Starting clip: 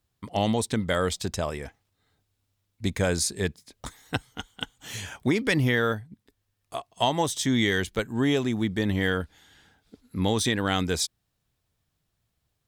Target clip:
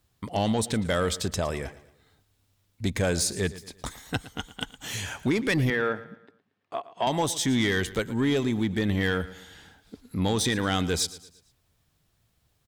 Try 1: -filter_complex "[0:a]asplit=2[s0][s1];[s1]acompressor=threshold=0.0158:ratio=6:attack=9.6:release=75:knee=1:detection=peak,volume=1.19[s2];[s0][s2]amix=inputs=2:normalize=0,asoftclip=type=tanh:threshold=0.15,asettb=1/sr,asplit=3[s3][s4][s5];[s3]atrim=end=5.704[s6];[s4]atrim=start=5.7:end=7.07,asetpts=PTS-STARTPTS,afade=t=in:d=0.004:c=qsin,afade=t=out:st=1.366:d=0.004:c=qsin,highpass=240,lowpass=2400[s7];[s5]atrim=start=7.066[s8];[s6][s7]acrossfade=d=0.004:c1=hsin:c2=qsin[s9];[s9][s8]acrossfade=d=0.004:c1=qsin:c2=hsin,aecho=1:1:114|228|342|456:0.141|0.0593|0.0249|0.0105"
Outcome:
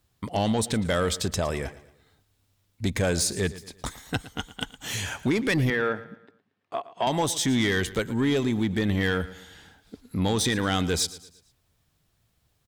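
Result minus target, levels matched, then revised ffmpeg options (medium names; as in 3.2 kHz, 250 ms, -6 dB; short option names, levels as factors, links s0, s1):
compression: peak gain reduction -6.5 dB
-filter_complex "[0:a]asplit=2[s0][s1];[s1]acompressor=threshold=0.00631:ratio=6:attack=9.6:release=75:knee=1:detection=peak,volume=1.19[s2];[s0][s2]amix=inputs=2:normalize=0,asoftclip=type=tanh:threshold=0.15,asettb=1/sr,asplit=3[s3][s4][s5];[s3]atrim=end=5.704[s6];[s4]atrim=start=5.7:end=7.07,asetpts=PTS-STARTPTS,afade=t=in:d=0.004:c=qsin,afade=t=out:st=1.366:d=0.004:c=qsin,highpass=240,lowpass=2400[s7];[s5]atrim=start=7.066[s8];[s6][s7]acrossfade=d=0.004:c1=hsin:c2=qsin[s9];[s9][s8]acrossfade=d=0.004:c1=qsin:c2=hsin,aecho=1:1:114|228|342|456:0.141|0.0593|0.0249|0.0105"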